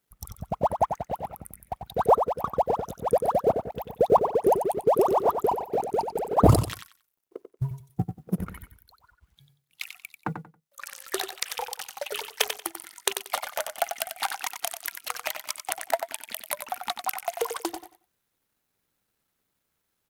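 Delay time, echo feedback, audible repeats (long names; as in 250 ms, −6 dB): 92 ms, 21%, 2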